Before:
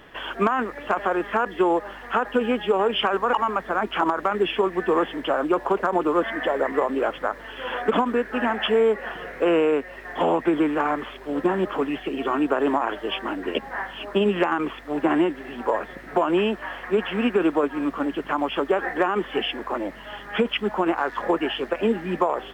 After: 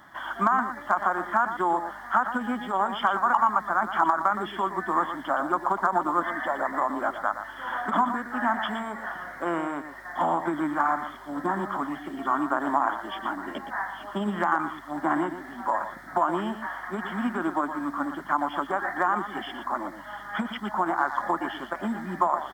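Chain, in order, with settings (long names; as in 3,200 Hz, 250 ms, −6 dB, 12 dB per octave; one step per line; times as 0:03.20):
high-pass filter 250 Hz 6 dB per octave
phaser with its sweep stopped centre 1,100 Hz, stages 4
single-tap delay 118 ms −10 dB
level +2 dB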